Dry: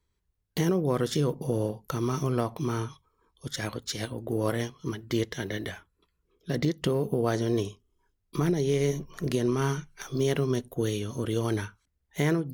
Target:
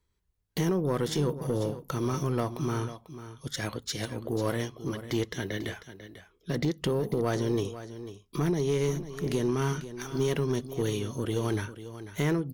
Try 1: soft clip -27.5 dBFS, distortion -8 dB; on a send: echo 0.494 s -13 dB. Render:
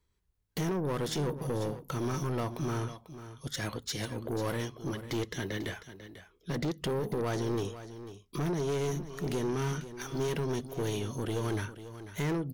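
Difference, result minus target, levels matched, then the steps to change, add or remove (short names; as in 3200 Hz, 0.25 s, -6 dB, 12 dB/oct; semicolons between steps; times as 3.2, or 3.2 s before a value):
soft clip: distortion +10 dB
change: soft clip -18.5 dBFS, distortion -18 dB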